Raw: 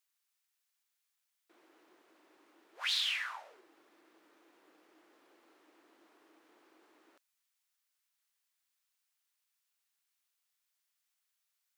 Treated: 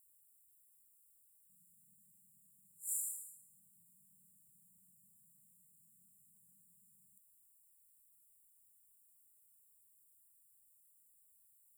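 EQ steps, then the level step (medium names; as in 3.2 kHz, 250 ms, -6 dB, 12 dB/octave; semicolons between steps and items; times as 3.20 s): brick-wall FIR band-stop 200–7000 Hz; inverse Chebyshev band-stop 780–4700 Hz, stop band 40 dB; bass shelf 120 Hz +4.5 dB; +15.5 dB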